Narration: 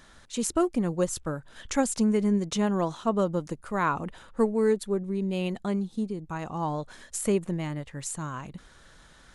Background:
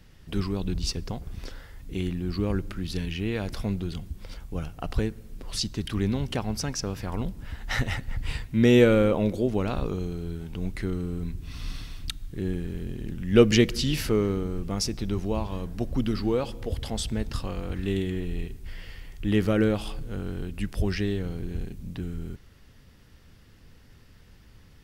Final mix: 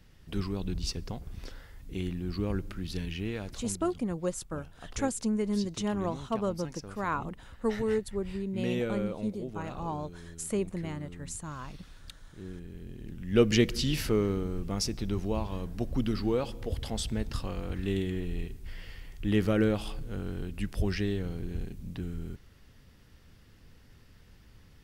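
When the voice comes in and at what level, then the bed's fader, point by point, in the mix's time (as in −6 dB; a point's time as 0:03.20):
3.25 s, −5.5 dB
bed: 0:03.20 −4.5 dB
0:03.89 −14 dB
0:12.37 −14 dB
0:13.73 −3 dB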